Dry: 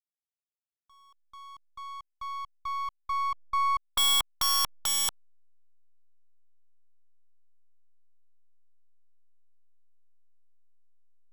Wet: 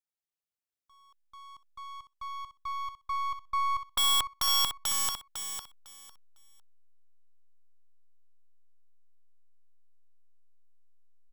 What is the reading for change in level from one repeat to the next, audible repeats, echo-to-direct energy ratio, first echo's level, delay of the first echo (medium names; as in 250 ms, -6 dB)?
-14.0 dB, 2, -7.5 dB, -7.5 dB, 503 ms